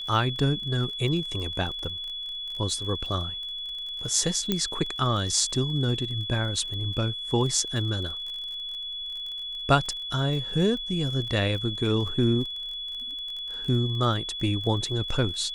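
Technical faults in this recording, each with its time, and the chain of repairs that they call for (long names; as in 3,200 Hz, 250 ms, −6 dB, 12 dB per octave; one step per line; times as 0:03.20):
surface crackle 31 per second −34 dBFS
whistle 3,400 Hz −32 dBFS
0:04.52: click −10 dBFS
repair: click removal
notch filter 3,400 Hz, Q 30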